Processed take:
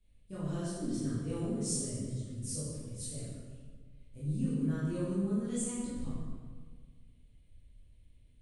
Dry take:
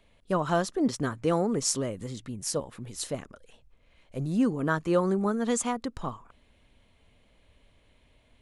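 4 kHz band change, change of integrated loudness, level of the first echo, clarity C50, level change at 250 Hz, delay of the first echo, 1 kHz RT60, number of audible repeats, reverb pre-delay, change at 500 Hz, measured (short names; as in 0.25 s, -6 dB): -11.0 dB, -7.0 dB, none, -2.5 dB, -6.0 dB, none, 1.5 s, none, 12 ms, -12.5 dB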